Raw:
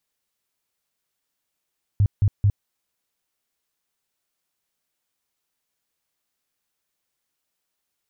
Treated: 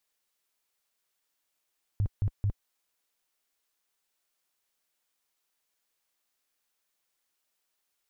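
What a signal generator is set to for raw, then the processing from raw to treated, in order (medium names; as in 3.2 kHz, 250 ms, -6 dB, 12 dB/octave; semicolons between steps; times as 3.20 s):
tone bursts 101 Hz, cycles 6, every 0.22 s, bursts 3, -13.5 dBFS
peaking EQ 110 Hz -10 dB 2.4 oct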